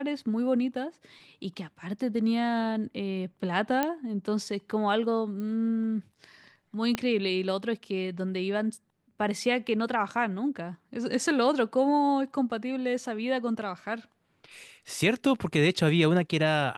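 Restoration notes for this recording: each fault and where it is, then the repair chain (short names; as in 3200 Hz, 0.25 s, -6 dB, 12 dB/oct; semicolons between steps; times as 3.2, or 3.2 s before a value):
3.83 pop -12 dBFS
5.4 pop -26 dBFS
6.95 pop -13 dBFS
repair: de-click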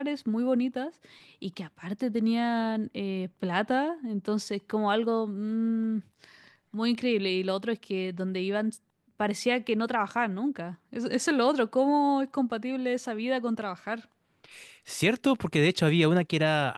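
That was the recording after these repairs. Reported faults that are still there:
6.95 pop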